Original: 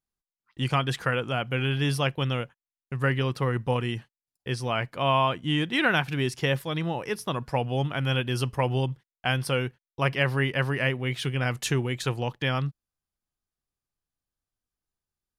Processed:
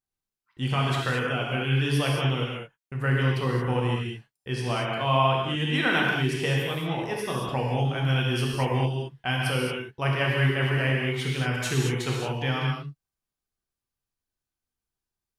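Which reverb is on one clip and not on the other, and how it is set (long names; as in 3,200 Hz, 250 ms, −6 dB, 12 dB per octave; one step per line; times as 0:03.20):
reverb whose tail is shaped and stops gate 250 ms flat, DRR −3 dB
level −4 dB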